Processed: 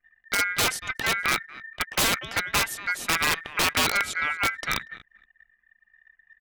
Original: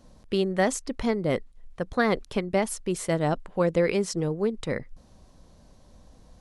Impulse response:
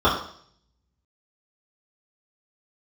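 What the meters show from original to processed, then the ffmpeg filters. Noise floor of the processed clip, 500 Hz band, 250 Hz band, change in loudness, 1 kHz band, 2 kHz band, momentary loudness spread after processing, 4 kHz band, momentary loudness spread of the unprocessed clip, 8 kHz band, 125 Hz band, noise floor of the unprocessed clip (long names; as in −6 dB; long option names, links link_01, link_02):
−69 dBFS, −11.5 dB, −11.0 dB, +2.5 dB, +4.0 dB, +10.5 dB, 7 LU, +12.5 dB, 8 LU, +8.0 dB, −8.5 dB, −55 dBFS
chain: -filter_complex "[0:a]equalizer=frequency=1400:width_type=o:width=1.6:gain=11.5,asplit=2[link_01][link_02];[link_02]aecho=0:1:237|474|711:0.0944|0.0359|0.0136[link_03];[link_01][link_03]amix=inputs=2:normalize=0,aeval=exprs='(mod(5.62*val(0)+1,2)-1)/5.62':channel_layout=same,aeval=exprs='val(0)*sin(2*PI*1800*n/s)':channel_layout=same,anlmdn=0.0251,volume=1.5dB"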